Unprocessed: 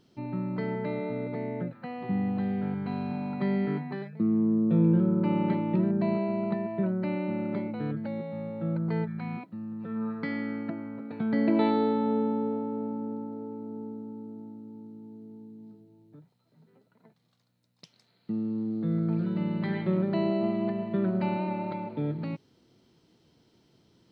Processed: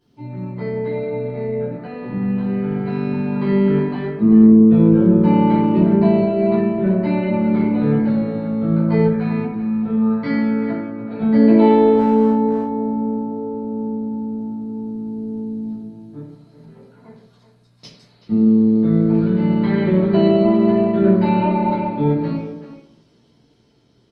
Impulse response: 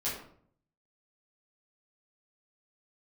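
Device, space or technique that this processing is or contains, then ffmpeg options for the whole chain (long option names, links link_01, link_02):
speakerphone in a meeting room: -filter_complex "[1:a]atrim=start_sample=2205[link_01];[0:a][link_01]afir=irnorm=-1:irlink=0,asplit=2[link_02][link_03];[link_03]adelay=380,highpass=300,lowpass=3400,asoftclip=type=hard:threshold=-15.5dB,volume=-10dB[link_04];[link_02][link_04]amix=inputs=2:normalize=0,dynaudnorm=framelen=700:gausssize=7:maxgain=14dB,volume=-1dB" -ar 48000 -c:a libopus -b:a 32k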